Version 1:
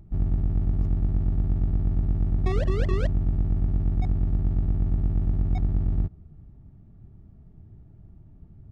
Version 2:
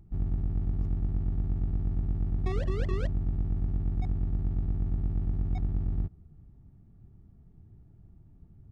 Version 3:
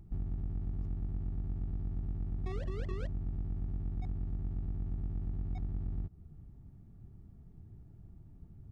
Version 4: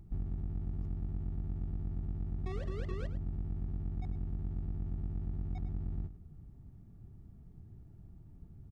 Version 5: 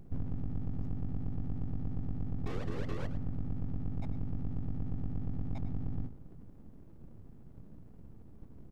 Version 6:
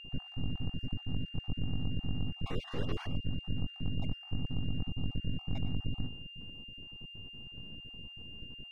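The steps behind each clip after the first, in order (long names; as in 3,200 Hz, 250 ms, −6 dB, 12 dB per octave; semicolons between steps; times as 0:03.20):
notch filter 620 Hz, Q 12; level −5.5 dB
downward compressor 4 to 1, threshold −35 dBFS, peak gain reduction 10 dB; level +1 dB
single-tap delay 104 ms −13.5 dB
full-wave rectification; on a send at −20 dB: convolution reverb RT60 1.8 s, pre-delay 93 ms; on the sum: level +3 dB
time-frequency cells dropped at random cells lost 33%; steady tone 2,800 Hz −49 dBFS; level +2 dB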